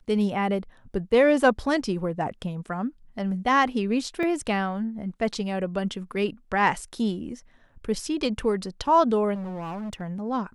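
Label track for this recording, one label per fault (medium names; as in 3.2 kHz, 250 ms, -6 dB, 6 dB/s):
4.230000	4.230000	dropout 2.3 ms
9.340000	10.020000	clipped -30.5 dBFS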